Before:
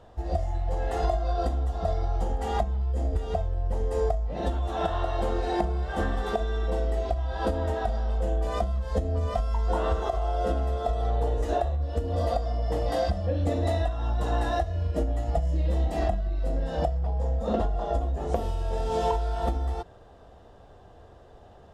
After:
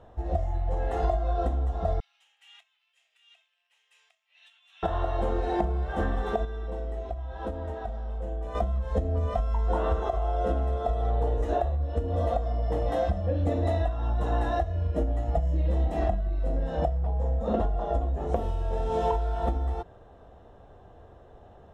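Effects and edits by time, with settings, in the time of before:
2.00–4.83 s: ladder high-pass 2.4 kHz, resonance 65%
6.45–8.55 s: gain -6.5 dB
whole clip: treble shelf 3.3 kHz -10 dB; band-stop 4.7 kHz, Q 7.6

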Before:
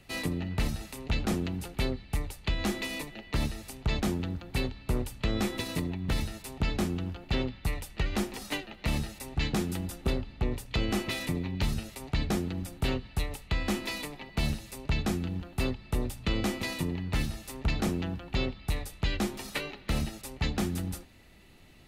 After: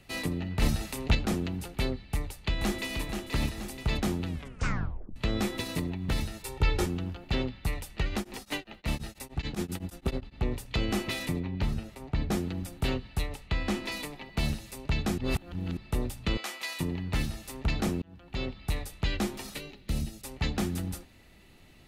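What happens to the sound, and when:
0.62–1.15 s: gain +5.5 dB
2.09–3.01 s: echo throw 480 ms, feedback 55%, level -6 dB
4.27 s: tape stop 0.89 s
6.43–6.86 s: comb 2.2 ms, depth 96%
8.08–10.34 s: tremolo of two beating tones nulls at 4.3 Hz -> 11 Hz
11.39–12.30 s: treble shelf 3.6 kHz -> 2.2 kHz -11.5 dB
13.27–13.92 s: treble shelf 9.4 kHz -11 dB
15.18–15.77 s: reverse
16.37–16.80 s: high-pass 920 Hz
18.02–18.62 s: fade in
19.54–20.24 s: peaking EQ 1.2 kHz -11.5 dB 2.9 oct

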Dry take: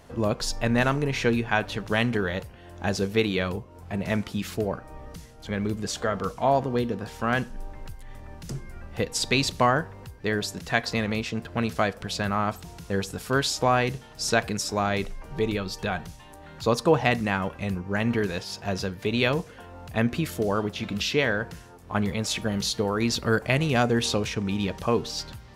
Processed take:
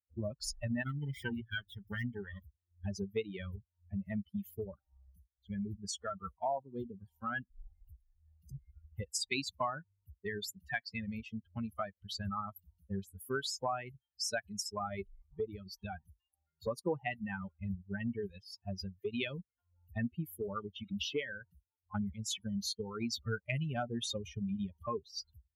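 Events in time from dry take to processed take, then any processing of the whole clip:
0.83–2.86 s: comb filter that takes the minimum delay 0.57 ms
whole clip: expander on every frequency bin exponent 3; high-pass 58 Hz; compression 3:1, threshold -44 dBFS; trim +6.5 dB

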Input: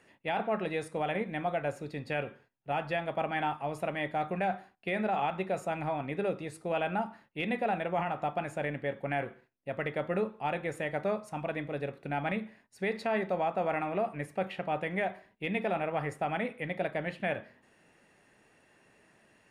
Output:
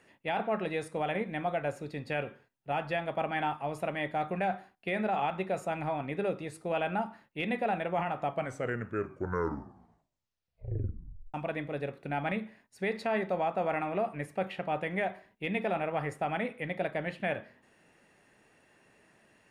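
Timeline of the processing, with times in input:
8.16 s: tape stop 3.18 s

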